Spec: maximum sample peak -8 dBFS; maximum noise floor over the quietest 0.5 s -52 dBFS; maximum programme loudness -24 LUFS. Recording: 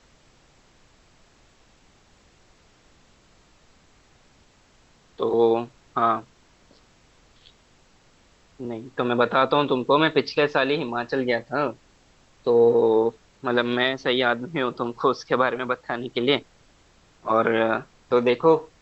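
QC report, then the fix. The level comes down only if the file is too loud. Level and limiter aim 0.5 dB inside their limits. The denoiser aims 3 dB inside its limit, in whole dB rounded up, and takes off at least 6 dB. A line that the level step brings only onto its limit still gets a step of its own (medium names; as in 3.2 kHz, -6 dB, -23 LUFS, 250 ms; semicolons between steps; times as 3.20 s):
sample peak -5.5 dBFS: fail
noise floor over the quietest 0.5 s -58 dBFS: pass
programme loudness -23.0 LUFS: fail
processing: trim -1.5 dB; peak limiter -8.5 dBFS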